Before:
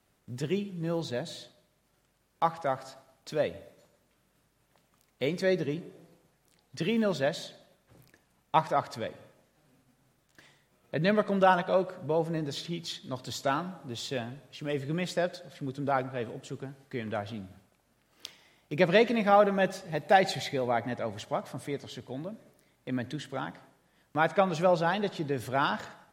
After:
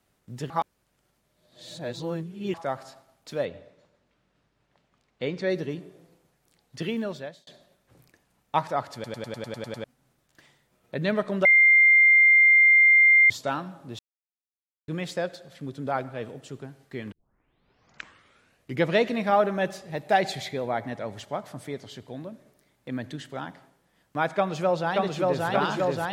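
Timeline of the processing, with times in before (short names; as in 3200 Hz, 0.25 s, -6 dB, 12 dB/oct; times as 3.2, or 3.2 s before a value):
0.5–2.54 reverse
3.45–5.5 LPF 4600 Hz
6.84–7.47 fade out linear
8.94 stutter in place 0.10 s, 9 plays
11.45–13.3 bleep 2100 Hz -13 dBFS
13.99–14.88 mute
17.12 tape start 1.84 s
24.37–25.47 echo throw 0.58 s, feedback 85%, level -1 dB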